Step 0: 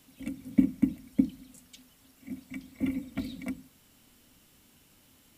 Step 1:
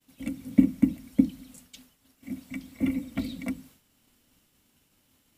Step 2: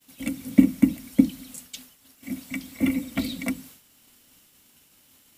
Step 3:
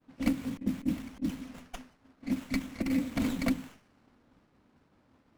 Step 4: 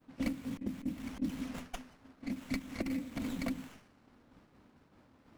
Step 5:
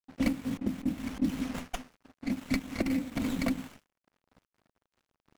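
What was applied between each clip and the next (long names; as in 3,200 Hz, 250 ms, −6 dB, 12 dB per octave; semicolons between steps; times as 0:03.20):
downward expander −53 dBFS; level +3.5 dB
spectral tilt +1.5 dB per octave; level +6.5 dB
compressor whose output falls as the input rises −25 dBFS, ratio −0.5; low-pass that shuts in the quiet parts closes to 1,200 Hz, open at −25.5 dBFS; windowed peak hold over 9 samples; level −3 dB
downward compressor 16 to 1, threshold −35 dBFS, peak gain reduction 14.5 dB; amplitude modulation by smooth noise, depth 55%; level +5.5 dB
dead-zone distortion −57 dBFS; level +7 dB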